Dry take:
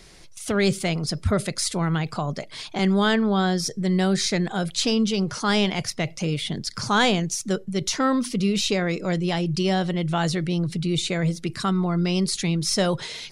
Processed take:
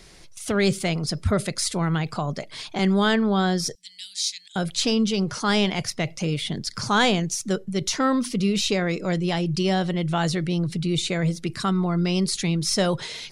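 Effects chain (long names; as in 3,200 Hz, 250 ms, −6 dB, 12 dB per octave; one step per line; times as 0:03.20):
0:03.75–0:04.56: inverse Chebyshev high-pass filter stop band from 1,200 Hz, stop band 50 dB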